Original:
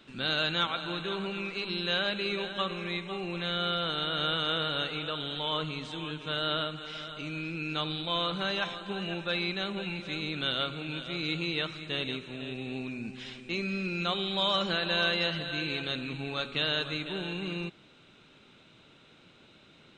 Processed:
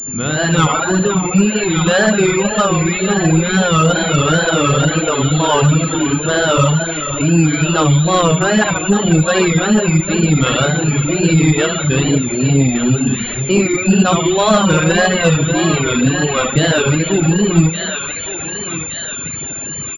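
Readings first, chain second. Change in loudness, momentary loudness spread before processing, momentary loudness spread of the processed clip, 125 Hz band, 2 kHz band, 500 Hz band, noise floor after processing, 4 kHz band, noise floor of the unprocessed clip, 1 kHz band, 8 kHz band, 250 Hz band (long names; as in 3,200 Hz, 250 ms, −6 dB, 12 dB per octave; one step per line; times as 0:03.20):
+17.5 dB, 9 LU, 7 LU, +25.5 dB, +15.0 dB, +20.0 dB, −25 dBFS, +8.0 dB, −58 dBFS, +18.0 dB, +40.5 dB, +22.5 dB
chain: parametric band 77 Hz +10.5 dB 2.9 octaves
automatic gain control gain up to 12 dB
high-shelf EQ 2,200 Hz −10 dB
reverse bouncing-ball delay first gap 70 ms, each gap 1.1×, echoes 5
tape wow and flutter 140 cents
feedback echo with a high-pass in the loop 1,166 ms, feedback 53%, high-pass 1,200 Hz, level −6.5 dB
in parallel at −2 dB: downward compressor, threshold −25 dBFS, peak gain reduction 13.5 dB
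on the sum: soft clipping −7.5 dBFS, distortion −20 dB
mains-hum notches 60/120/180 Hz
reverb reduction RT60 1.8 s
switching amplifier with a slow clock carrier 7,200 Hz
level +7 dB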